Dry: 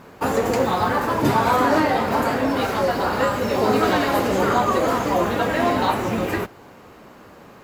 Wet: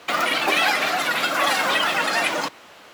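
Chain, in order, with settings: wide varispeed 2.6×; frequency shift +28 Hz; trim -1.5 dB

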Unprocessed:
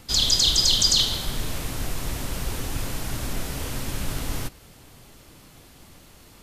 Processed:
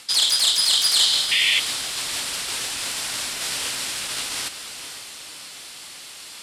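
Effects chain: tracing distortion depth 0.14 ms; reverse; compression, threshold -28 dBFS, peak gain reduction 13 dB; reverse; peaking EQ 6.4 kHz -6 dB 0.37 oct; echo that smears into a reverb 489 ms, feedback 43%, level -11 dB; painted sound noise, 1.31–1.60 s, 1.8–3.6 kHz -31 dBFS; in parallel at -1 dB: peak limiter -27 dBFS, peak gain reduction 10.5 dB; on the sum: frequency weighting ITU-R 468; trim +1 dB

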